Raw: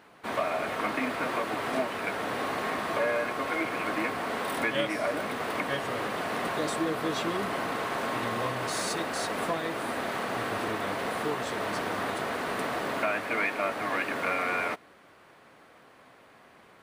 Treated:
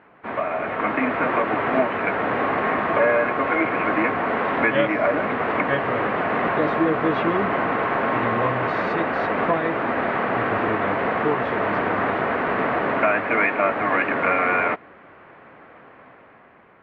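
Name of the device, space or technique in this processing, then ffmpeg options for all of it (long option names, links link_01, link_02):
action camera in a waterproof case: -af "lowpass=frequency=2400:width=0.5412,lowpass=frequency=2400:width=1.3066,dynaudnorm=framelen=150:gausssize=11:maxgain=6dB,volume=3.5dB" -ar 48000 -c:a aac -b:a 96k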